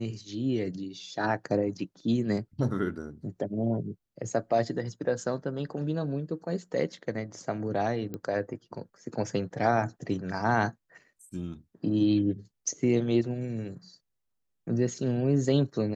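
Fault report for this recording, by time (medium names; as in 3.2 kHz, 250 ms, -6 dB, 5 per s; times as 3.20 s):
8.14 s: pop -23 dBFS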